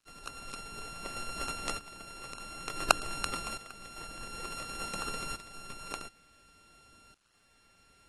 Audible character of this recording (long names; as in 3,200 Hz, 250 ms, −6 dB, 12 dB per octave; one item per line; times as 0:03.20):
a buzz of ramps at a fixed pitch in blocks of 32 samples
tremolo saw up 0.56 Hz, depth 80%
a quantiser's noise floor 12 bits, dither none
AAC